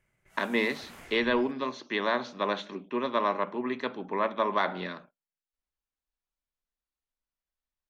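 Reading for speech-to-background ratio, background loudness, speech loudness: 20.0 dB, -50.0 LUFS, -30.0 LUFS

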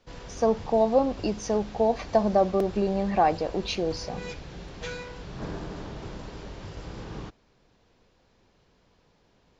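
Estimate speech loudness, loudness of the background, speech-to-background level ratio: -25.5 LUFS, -40.5 LUFS, 15.0 dB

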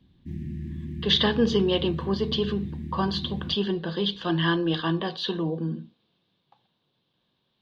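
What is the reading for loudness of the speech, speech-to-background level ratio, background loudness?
-26.0 LUFS, 10.0 dB, -36.0 LUFS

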